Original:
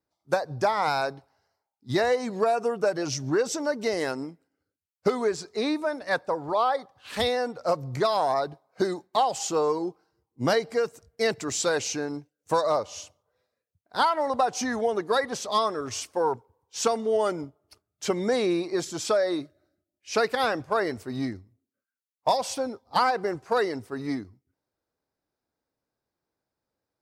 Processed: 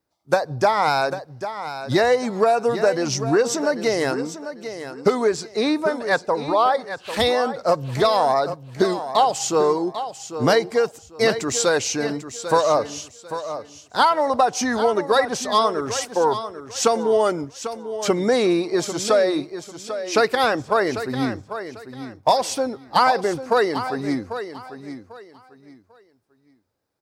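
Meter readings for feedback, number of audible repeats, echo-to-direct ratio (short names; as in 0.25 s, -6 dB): 25%, 2, -10.5 dB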